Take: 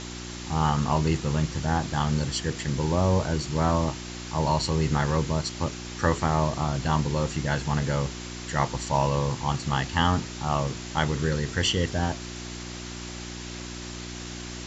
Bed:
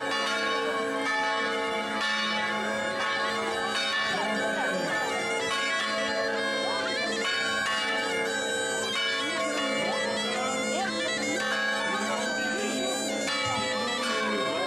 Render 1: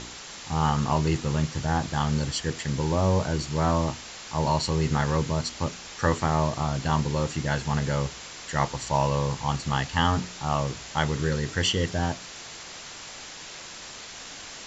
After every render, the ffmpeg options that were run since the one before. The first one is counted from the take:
-af "bandreject=f=60:t=h:w=4,bandreject=f=120:t=h:w=4,bandreject=f=180:t=h:w=4,bandreject=f=240:t=h:w=4,bandreject=f=300:t=h:w=4,bandreject=f=360:t=h:w=4"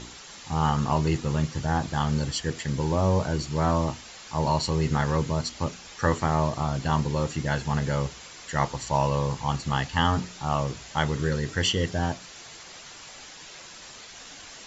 -af "afftdn=nr=6:nf=-42"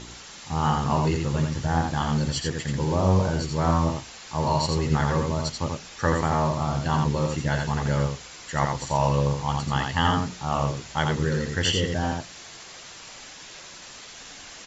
-af "aecho=1:1:85:0.631"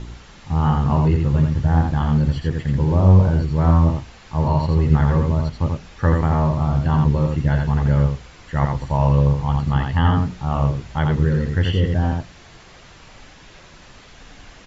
-filter_complex "[0:a]acrossover=split=3600[a][b];[b]acompressor=threshold=-45dB:ratio=4:attack=1:release=60[c];[a][c]amix=inputs=2:normalize=0,aemphasis=mode=reproduction:type=bsi"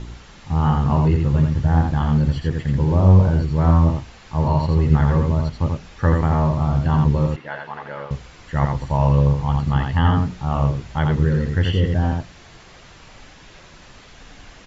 -filter_complex "[0:a]asettb=1/sr,asplit=3[a][b][c];[a]atrim=end=7.364[d];[b]atrim=start=7.36:end=8.11,asetpts=PTS-STARTPTS,afade=t=in:d=0.004:c=qsin,afade=t=out:st=0.746:d=0.004:c=qsin,highpass=640,lowpass=3k[e];[c]atrim=start=8.106[f];[d][e]acrossfade=d=0.004:c1=hsin:c2=qsin[g];[g][f]acrossfade=d=0.004:c1=qsin:c2=hsin"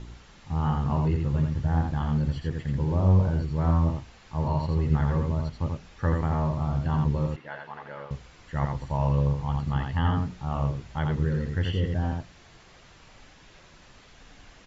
-af "volume=-8dB"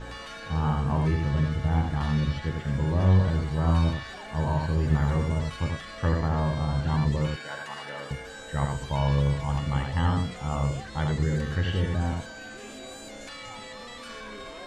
-filter_complex "[1:a]volume=-13dB[a];[0:a][a]amix=inputs=2:normalize=0"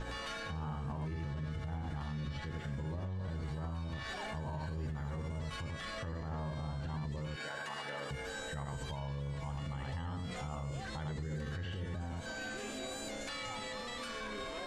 -af "acompressor=threshold=-28dB:ratio=6,alimiter=level_in=8dB:limit=-24dB:level=0:latency=1:release=87,volume=-8dB"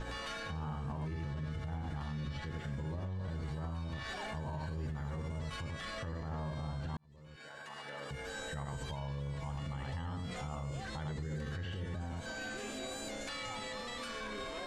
-filter_complex "[0:a]asplit=2[a][b];[a]atrim=end=6.97,asetpts=PTS-STARTPTS,afade=t=out:st=6.966:d=0.004:c=hsin[c];[b]atrim=start=6.97,asetpts=PTS-STARTPTS,afade=t=in:d=1.46[d];[c][d]concat=n=2:v=0:a=1"

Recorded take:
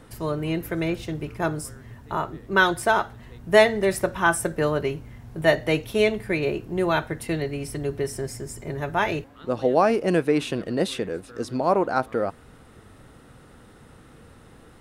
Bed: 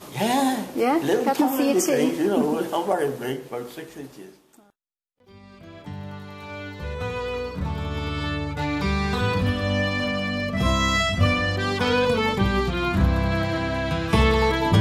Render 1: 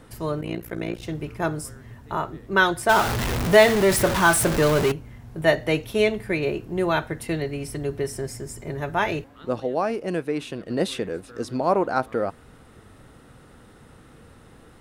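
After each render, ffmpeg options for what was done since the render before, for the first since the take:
-filter_complex "[0:a]asettb=1/sr,asplit=3[a][b][c];[a]atrim=end=0.414[d];[b]atrim=start=0.41:end=1.03,asetpts=PTS-STARTPTS,afade=t=in:d=0.004:c=qsin,afade=t=out:st=0.616:d=0.004:c=qsin,tremolo=f=59:d=0.947[e];[c]atrim=start=1.026[f];[d][e]acrossfade=d=0.004:c1=hsin:c2=qsin[g];[g][f]acrossfade=d=0.004:c1=qsin:c2=hsin,asettb=1/sr,asplit=3[h][i][j];[h]atrim=end=2.894[k];[i]atrim=start=2.89:end=4.92,asetpts=PTS-STARTPTS,afade=t=in:d=0.004:c=qsin,afade=t=out:st=2.026:d=0.004:c=qsin,aeval=exprs='val(0)+0.5*0.106*sgn(val(0))':c=same[l];[j]atrim=start=4.916[m];[k][l]acrossfade=d=0.004:c1=hsin:c2=qsin[n];[n][m]acrossfade=d=0.004:c1=qsin:c2=hsin,asplit=3[o][p][q];[o]atrim=end=9.602[r];[p]atrim=start=9.598:end=10.702,asetpts=PTS-STARTPTS,volume=-5.5dB[s];[q]atrim=start=10.698[t];[r][s]acrossfade=d=0.004:c1=hsin:c2=hsin[u];[u][t]acrossfade=d=0.004:c1=hsin:c2=hsin"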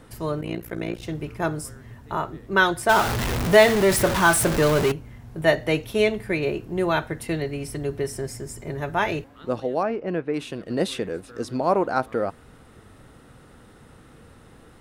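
-filter_complex "[0:a]asettb=1/sr,asplit=3[a][b][c];[a]atrim=end=9.834[d];[b]atrim=start=9.83:end=10.34,asetpts=PTS-STARTPTS,afade=t=in:d=0.004:c=qsin,afade=t=out:st=0.506:d=0.004:c=qsin,lowpass=2.4k[e];[c]atrim=start=10.336[f];[d][e]acrossfade=d=0.004:c1=hsin:c2=qsin[g];[g][f]acrossfade=d=0.004:c1=qsin:c2=hsin"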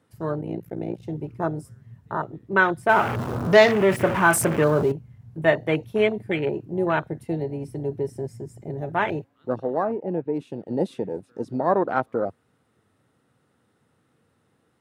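-af "afwtdn=0.0447,highpass=f=92:w=0.5412,highpass=f=92:w=1.3066"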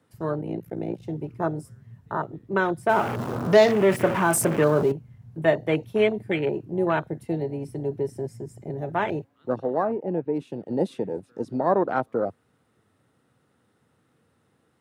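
-filter_complex "[0:a]acrossover=split=110|880|3800[a][b][c][d];[a]acompressor=threshold=-49dB:ratio=6[e];[c]alimiter=limit=-20dB:level=0:latency=1:release=371[f];[e][b][f][d]amix=inputs=4:normalize=0"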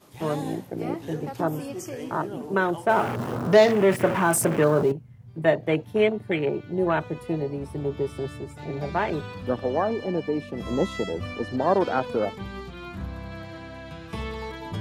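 -filter_complex "[1:a]volume=-14.5dB[a];[0:a][a]amix=inputs=2:normalize=0"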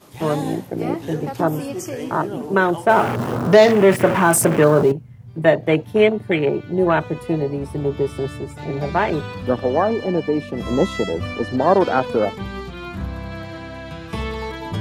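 -af "volume=6.5dB,alimiter=limit=-1dB:level=0:latency=1"

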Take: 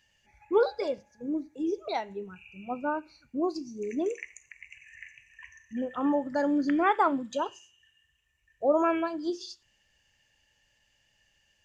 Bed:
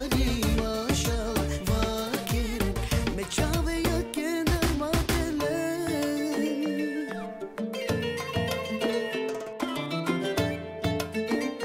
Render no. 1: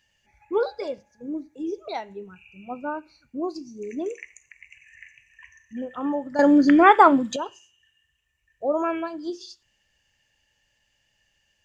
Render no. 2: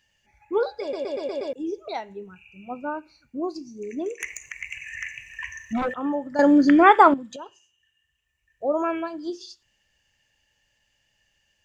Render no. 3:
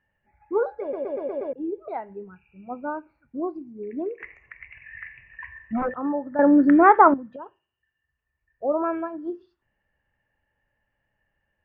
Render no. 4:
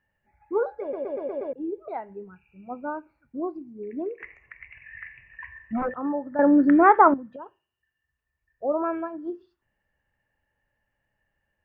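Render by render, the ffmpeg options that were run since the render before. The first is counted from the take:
-filter_complex "[0:a]asplit=3[a][b][c];[a]atrim=end=6.392[d];[b]atrim=start=6.388:end=7.362,asetpts=PTS-STARTPTS,volume=10.5dB[e];[c]atrim=start=7.358[f];[d][e]acrossfade=d=0.004:c1=hsin:c2=hsin[g];[g][f]acrossfade=d=0.004:c1=hsin:c2=hsin"
-filter_complex "[0:a]asettb=1/sr,asplit=3[a][b][c];[a]atrim=end=4.204[d];[b]atrim=start=4.2:end=5.94,asetpts=PTS-STARTPTS,afade=t=in:d=0.004:c=qsin,afade=t=out:st=1.736:d=0.004:c=qsin,aeval=exprs='0.0891*sin(PI/2*3.55*val(0)/0.0891)':c=same[e];[c]atrim=start=5.936[f];[d][e]acrossfade=d=0.004:c1=hsin:c2=qsin[g];[g][f]acrossfade=d=0.004:c1=qsin:c2=hsin,asplit=8[h][i][j][k][l][m][n][o];[h]atrim=end=0.932[p];[i]atrim=start=0.808:end=0.932[q];[j]atrim=start=0.808:end=0.932[r];[k]atrim=start=0.808:end=0.932[s];[l]atrim=start=0.808:end=0.932[t];[m]atrim=start=0.808:end=0.932[u];[n]atrim=start=1.528:end=7.14,asetpts=PTS-STARTPTS,afade=t=out:st=5.608:d=0.004:c=hsin:silence=0.223872[v];[o]atrim=start=7.14,asetpts=PTS-STARTPTS,afade=t=in:d=1.5:silence=0.223872[w];[p][q]acrossfade=d=0.004:c1=hsin:c2=hsin[x];[x][r]acrossfade=d=0.004:c1=hsin:c2=hsin[y];[y][s]acrossfade=d=0.004:c1=hsin:c2=hsin[z];[z][t]acrossfade=d=0.004:c1=hsin:c2=hsin[aa];[aa][u]acrossfade=d=0.004:c1=hsin:c2=hsin[ab];[v][w]concat=n=2:v=0:a=1[ac];[ab][ac]acrossfade=d=0.004:c1=hsin:c2=hsin"
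-af "lowpass=f=1.7k:w=0.5412,lowpass=f=1.7k:w=1.3066,bandreject=f=50:t=h:w=6,bandreject=f=100:t=h:w=6,bandreject=f=150:t=h:w=6"
-af "volume=-1.5dB"

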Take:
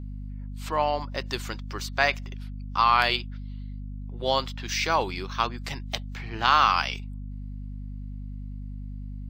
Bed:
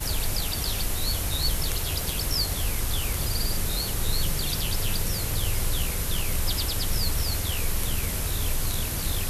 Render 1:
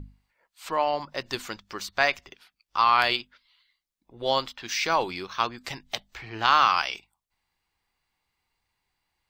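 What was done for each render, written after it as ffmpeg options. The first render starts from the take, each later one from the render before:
-af "bandreject=f=50:t=h:w=6,bandreject=f=100:t=h:w=6,bandreject=f=150:t=h:w=6,bandreject=f=200:t=h:w=6,bandreject=f=250:t=h:w=6"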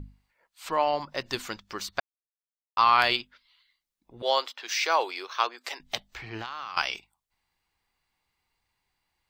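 -filter_complex "[0:a]asettb=1/sr,asplit=3[a][b][c];[a]atrim=end=4.224[d];[b]atrim=start=4.22:end=5.8,asetpts=PTS-STARTPTS,afade=t=in:d=0.004:c=qsin,afade=t=out:st=1.576:d=0.004:c=qsin,highpass=f=400:w=0.5412,highpass=f=400:w=1.3066[e];[c]atrim=start=5.796[f];[d][e]acrossfade=d=0.004:c1=hsin:c2=qsin[g];[g][f]acrossfade=d=0.004:c1=qsin:c2=hsin,asettb=1/sr,asplit=3[h][i][j];[h]atrim=end=6.374[k];[i]atrim=start=6.37:end=6.77,asetpts=PTS-STARTPTS,afade=t=in:d=0.004:c=qsin,afade=t=out:st=0.396:d=0.004:c=qsin,acompressor=threshold=-32dB:ratio=12:attack=3.2:release=140:knee=1:detection=peak[l];[j]atrim=start=6.766[m];[k][l]acrossfade=d=0.004:c1=hsin:c2=qsin[n];[n][m]acrossfade=d=0.004:c1=qsin:c2=hsin,asplit=3[o][p][q];[o]atrim=end=2,asetpts=PTS-STARTPTS,afade=t=out:st=1.996:d=0.004:c=hsin[r];[p]atrim=start=2:end=2.77,asetpts=PTS-STARTPTS,volume=0[s];[q]atrim=start=2.77,asetpts=PTS-STARTPTS,afade=t=in:d=0.004:c=hsin[t];[r][s][t]concat=n=3:v=0:a=1"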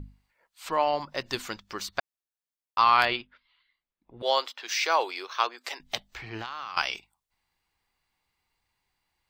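-filter_complex "[0:a]asettb=1/sr,asplit=3[a][b][c];[a]atrim=end=3.054[d];[b]atrim=start=3.05:end=4.21,asetpts=PTS-STARTPTS,afade=t=in:d=0.004:c=qsin,afade=t=out:st=1.156:d=0.004:c=qsin,lowpass=2.7k[e];[c]atrim=start=4.206[f];[d][e]acrossfade=d=0.004:c1=hsin:c2=qsin[g];[g][f]acrossfade=d=0.004:c1=qsin:c2=hsin"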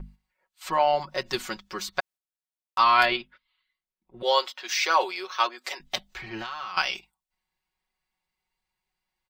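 -af "agate=range=-8dB:threshold=-51dB:ratio=16:detection=peak,aecho=1:1:5.4:0.79"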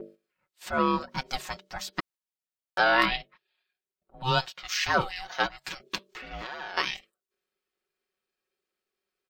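-af "aeval=exprs='val(0)*sin(2*PI*390*n/s)':c=same"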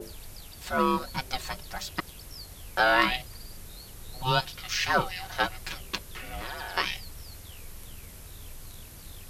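-filter_complex "[1:a]volume=-17.5dB[a];[0:a][a]amix=inputs=2:normalize=0"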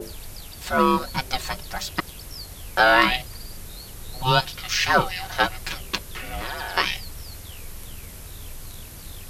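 -af "volume=6dB,alimiter=limit=-1dB:level=0:latency=1"

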